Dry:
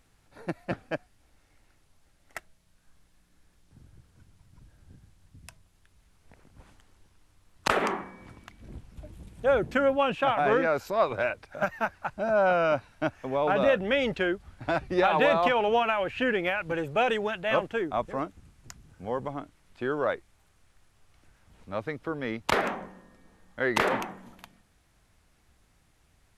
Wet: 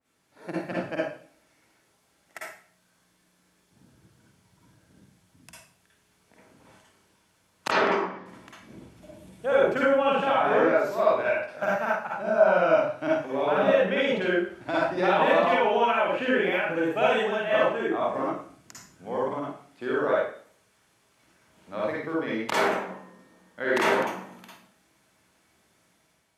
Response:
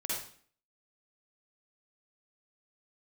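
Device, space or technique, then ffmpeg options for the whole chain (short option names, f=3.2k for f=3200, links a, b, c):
far laptop microphone: -filter_complex "[1:a]atrim=start_sample=2205[a];[0:a][a]afir=irnorm=-1:irlink=0,highpass=170,dynaudnorm=f=150:g=5:m=6dB,asettb=1/sr,asplit=3[b][c][d];[b]atrim=end=7.714[e];[c]atrim=start=7.71:end=8.26,asetpts=PTS-STARTPTS,afade=t=in:d=0.004:c=qsin,afade=t=out:st=0.546:d=0.004:c=qsin,lowpass=f=5.2k:w=0.5412,lowpass=f=5.2k:w=1.3066[f];[d]atrim=start=8.256[g];[e][f]acrossfade=d=0.004:c1=hsin:c2=qsin[h];[h][g]acrossfade=d=0.004:c1=qsin:c2=hsin,adynamicequalizer=threshold=0.0355:dfrequency=2200:dqfactor=0.7:tfrequency=2200:tqfactor=0.7:attack=5:release=100:ratio=0.375:range=1.5:mode=cutabove:tftype=highshelf,volume=-5.5dB"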